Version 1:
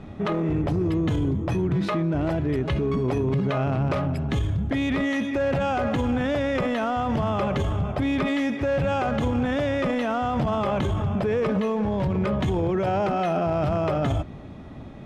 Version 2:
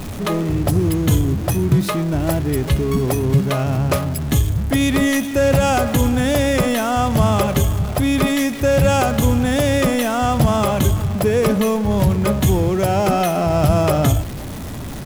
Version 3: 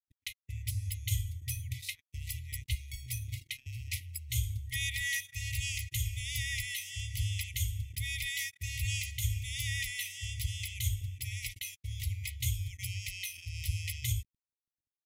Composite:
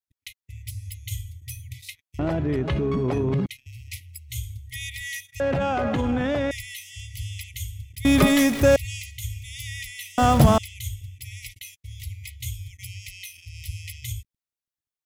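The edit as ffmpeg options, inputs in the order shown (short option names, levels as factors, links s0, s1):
-filter_complex "[0:a]asplit=2[s0][s1];[1:a]asplit=2[s2][s3];[2:a]asplit=5[s4][s5][s6][s7][s8];[s4]atrim=end=2.192[s9];[s0]atrim=start=2.188:end=3.462[s10];[s5]atrim=start=3.458:end=5.402[s11];[s1]atrim=start=5.398:end=6.512[s12];[s6]atrim=start=6.508:end=8.052[s13];[s2]atrim=start=8.048:end=8.762[s14];[s7]atrim=start=8.758:end=10.182[s15];[s3]atrim=start=10.178:end=10.582[s16];[s8]atrim=start=10.578[s17];[s9][s10]acrossfade=d=0.004:c1=hsin:c2=hsin[s18];[s18][s11]acrossfade=d=0.004:c1=hsin:c2=hsin[s19];[s19][s12]acrossfade=d=0.004:c1=hsin:c2=hsin[s20];[s20][s13]acrossfade=d=0.004:c1=hsin:c2=hsin[s21];[s21][s14]acrossfade=d=0.004:c1=hsin:c2=hsin[s22];[s22][s15]acrossfade=d=0.004:c1=hsin:c2=hsin[s23];[s23][s16]acrossfade=d=0.004:c1=hsin:c2=hsin[s24];[s24][s17]acrossfade=d=0.004:c1=hsin:c2=hsin"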